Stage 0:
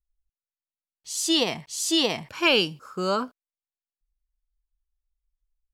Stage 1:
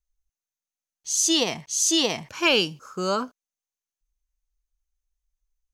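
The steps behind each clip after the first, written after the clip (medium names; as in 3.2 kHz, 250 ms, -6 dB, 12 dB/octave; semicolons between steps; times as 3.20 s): peaking EQ 6.3 kHz +14 dB 0.21 oct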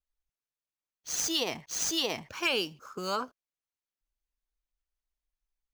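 median filter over 5 samples; harmonic-percussive split harmonic -10 dB; compression 2.5:1, threshold -27 dBFS, peak gain reduction 6 dB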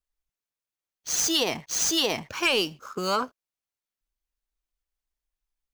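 waveshaping leveller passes 1; trim +3 dB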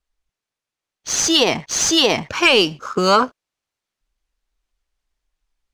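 in parallel at -3 dB: gain riding 0.5 s; on the sum: distance through air 53 m; trim +6 dB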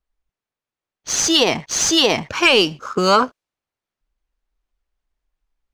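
tape noise reduction on one side only decoder only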